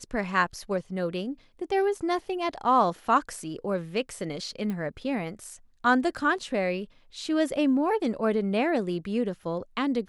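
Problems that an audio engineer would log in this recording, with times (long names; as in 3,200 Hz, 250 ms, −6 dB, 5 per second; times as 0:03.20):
0:04.70: click −22 dBFS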